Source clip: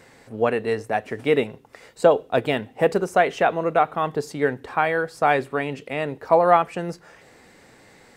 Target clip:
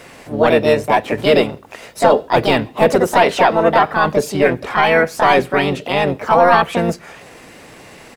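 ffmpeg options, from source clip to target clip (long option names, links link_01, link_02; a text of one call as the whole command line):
ffmpeg -i in.wav -filter_complex "[0:a]apsyclip=16.5dB,asplit=3[link_01][link_02][link_03];[link_02]asetrate=22050,aresample=44100,atempo=2,volume=-14dB[link_04];[link_03]asetrate=58866,aresample=44100,atempo=0.749154,volume=-2dB[link_05];[link_01][link_04][link_05]amix=inputs=3:normalize=0,volume=-7.5dB" out.wav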